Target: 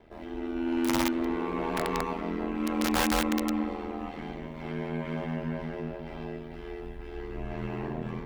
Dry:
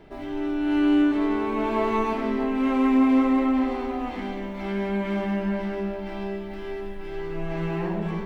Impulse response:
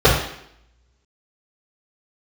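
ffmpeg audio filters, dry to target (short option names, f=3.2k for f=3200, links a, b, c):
-filter_complex "[0:a]aeval=exprs='(mod(5.01*val(0)+1,2)-1)/5.01':c=same,asettb=1/sr,asplit=3[a][b][c];[a]atrim=end=0.564[d];[b]atrim=start=0.56:end=2.01,asetpts=PTS-STARTPTS,afade=t=in:d=0.004:c=qsin,afade=t=out:st=1.446:d=0.004:c=qsin,aeval=exprs='0.211*(cos(1*acos(clip(val(0)/0.211,-1,1)))-cos(1*PI/2))+0.0168*(cos(5*acos(clip(val(0)/0.211,-1,1)))-cos(5*PI/2))':c=same[e];[c]atrim=start=2.006[f];[d][e]acrossfade=d=0.004:c1=hsin:c2=qsin[g];[g][f]acrossfade=d=0.004:c1=qsin:c2=hsin,aeval=exprs='val(0)*sin(2*PI*41*n/s)':c=same,volume=-4dB"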